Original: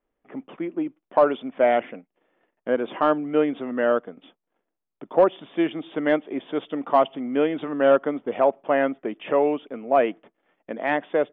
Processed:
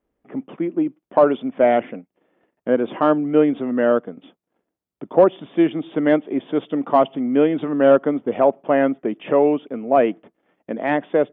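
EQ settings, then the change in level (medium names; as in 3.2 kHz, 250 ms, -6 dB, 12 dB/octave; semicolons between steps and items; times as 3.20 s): high-pass 43 Hz; bass shelf 430 Hz +10 dB; 0.0 dB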